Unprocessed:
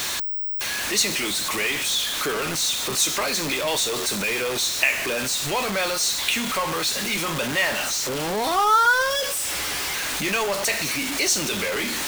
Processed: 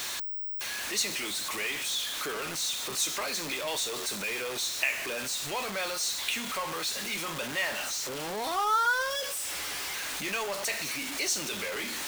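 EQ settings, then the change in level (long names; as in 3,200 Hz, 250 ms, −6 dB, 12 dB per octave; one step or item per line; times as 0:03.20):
low-shelf EQ 300 Hz −5.5 dB
−8.0 dB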